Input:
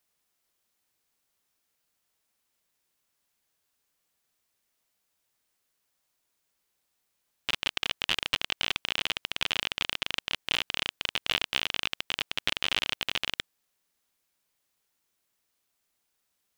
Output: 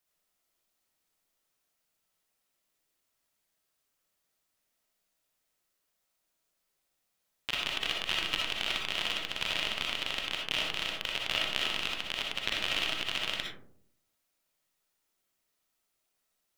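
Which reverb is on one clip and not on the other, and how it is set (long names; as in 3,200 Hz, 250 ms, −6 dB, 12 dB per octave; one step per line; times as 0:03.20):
comb and all-pass reverb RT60 0.64 s, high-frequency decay 0.3×, pre-delay 20 ms, DRR −1.5 dB
level −5 dB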